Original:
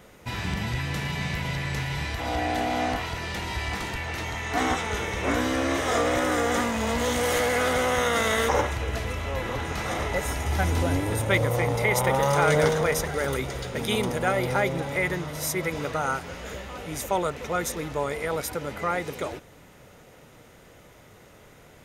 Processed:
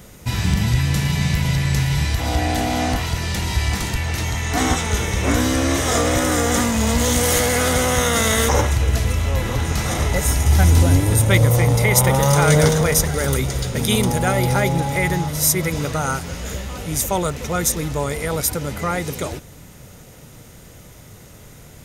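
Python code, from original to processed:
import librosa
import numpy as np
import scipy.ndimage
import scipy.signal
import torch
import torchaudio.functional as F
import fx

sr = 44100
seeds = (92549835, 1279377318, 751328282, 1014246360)

y = fx.dmg_tone(x, sr, hz=830.0, level_db=-30.0, at=(14.06, 15.27), fade=0.02)
y = fx.bass_treble(y, sr, bass_db=10, treble_db=11)
y = y * 10.0 ** (3.0 / 20.0)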